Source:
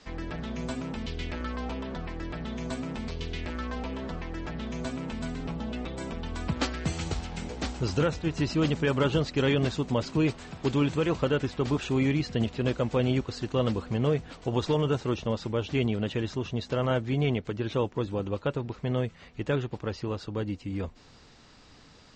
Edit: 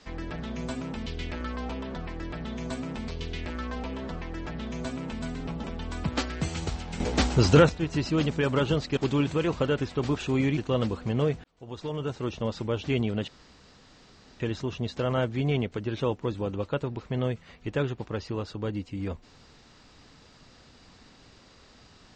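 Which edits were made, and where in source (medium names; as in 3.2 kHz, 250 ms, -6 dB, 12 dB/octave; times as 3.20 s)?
5.64–6.08 s: delete
7.44–8.13 s: gain +8.5 dB
9.41–10.59 s: delete
12.19–13.42 s: delete
14.29–15.41 s: fade in
16.13 s: insert room tone 1.12 s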